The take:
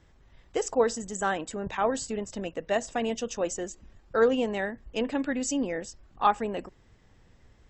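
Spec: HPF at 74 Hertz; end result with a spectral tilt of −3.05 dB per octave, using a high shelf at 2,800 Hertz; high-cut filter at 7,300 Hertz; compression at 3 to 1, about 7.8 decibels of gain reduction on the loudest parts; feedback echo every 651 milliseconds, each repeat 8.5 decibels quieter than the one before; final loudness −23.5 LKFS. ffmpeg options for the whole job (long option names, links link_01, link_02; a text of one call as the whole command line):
ffmpeg -i in.wav -af "highpass=74,lowpass=7300,highshelf=frequency=2800:gain=6,acompressor=threshold=-27dB:ratio=3,aecho=1:1:651|1302|1953|2604:0.376|0.143|0.0543|0.0206,volume=8.5dB" out.wav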